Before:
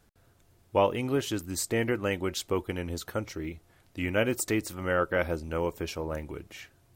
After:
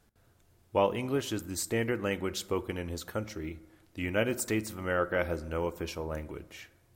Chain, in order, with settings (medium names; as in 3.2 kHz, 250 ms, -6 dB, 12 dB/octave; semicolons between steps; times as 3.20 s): on a send: peaking EQ 12 kHz +12.5 dB 0.31 oct + reverberation RT60 1.2 s, pre-delay 5 ms, DRR 15 dB; on the sum: trim -2.5 dB